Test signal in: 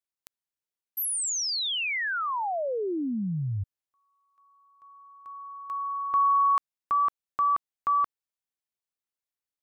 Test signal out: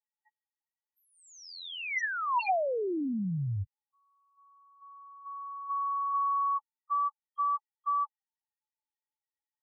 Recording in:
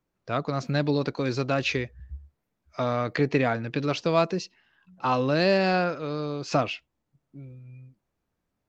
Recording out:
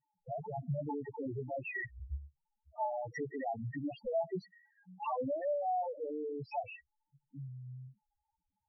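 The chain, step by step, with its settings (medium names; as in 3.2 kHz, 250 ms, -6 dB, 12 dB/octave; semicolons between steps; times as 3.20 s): compression 8:1, threshold -28 dBFS; small resonant body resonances 860/1900 Hz, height 16 dB, ringing for 25 ms; integer overflow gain 17.5 dB; loudest bins only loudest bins 2; distance through air 170 m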